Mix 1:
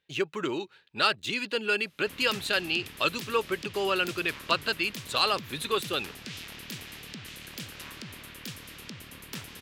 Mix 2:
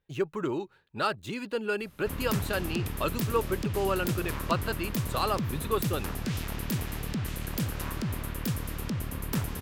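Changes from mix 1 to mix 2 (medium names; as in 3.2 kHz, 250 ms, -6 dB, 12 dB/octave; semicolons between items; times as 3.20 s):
background +9.5 dB; master: remove frequency weighting D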